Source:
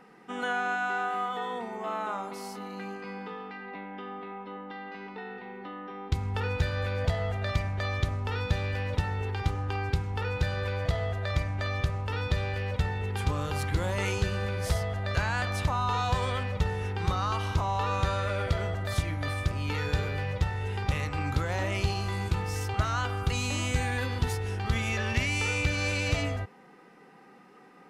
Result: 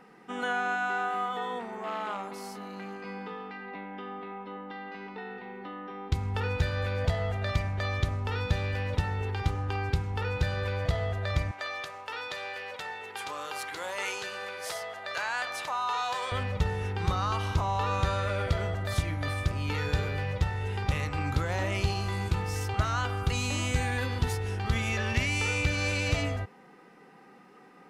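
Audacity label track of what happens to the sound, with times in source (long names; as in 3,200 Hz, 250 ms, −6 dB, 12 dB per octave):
1.590000	3.050000	saturating transformer saturates under 1,100 Hz
11.510000	16.320000	high-pass filter 630 Hz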